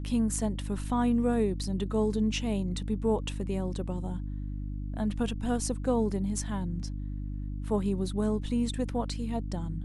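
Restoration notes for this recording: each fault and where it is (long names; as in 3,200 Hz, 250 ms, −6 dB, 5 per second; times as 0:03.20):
mains hum 50 Hz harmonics 6 −35 dBFS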